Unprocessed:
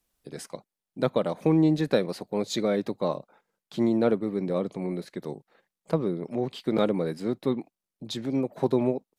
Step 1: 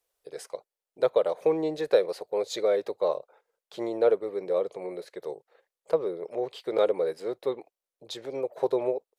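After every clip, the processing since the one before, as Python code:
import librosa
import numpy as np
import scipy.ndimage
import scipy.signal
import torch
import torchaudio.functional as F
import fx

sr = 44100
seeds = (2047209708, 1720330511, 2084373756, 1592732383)

y = fx.low_shelf_res(x, sr, hz=330.0, db=-11.5, q=3.0)
y = y * 10.0 ** (-3.0 / 20.0)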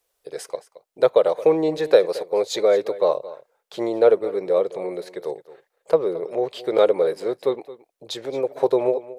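y = x + 10.0 ** (-17.0 / 20.0) * np.pad(x, (int(221 * sr / 1000.0), 0))[:len(x)]
y = y * 10.0 ** (7.0 / 20.0)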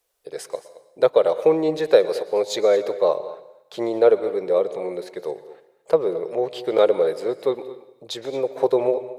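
y = fx.rev_plate(x, sr, seeds[0], rt60_s=0.89, hf_ratio=1.0, predelay_ms=105, drr_db=15.0)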